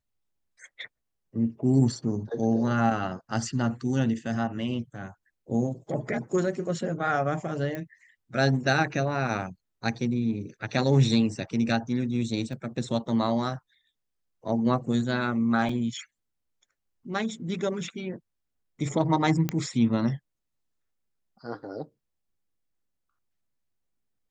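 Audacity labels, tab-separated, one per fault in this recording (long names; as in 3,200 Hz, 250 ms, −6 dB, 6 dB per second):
7.750000	7.750000	click −21 dBFS
12.530000	12.530000	drop-out 2.6 ms
15.690000	15.690000	drop-out 3.3 ms
19.490000	19.490000	click −13 dBFS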